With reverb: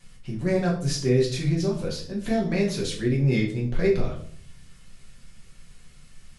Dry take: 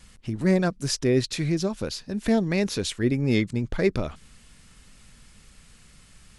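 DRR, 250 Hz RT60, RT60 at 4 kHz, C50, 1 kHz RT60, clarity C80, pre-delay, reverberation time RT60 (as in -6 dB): -3.5 dB, 0.80 s, 0.40 s, 7.5 dB, 0.45 s, 12.0 dB, 5 ms, 0.55 s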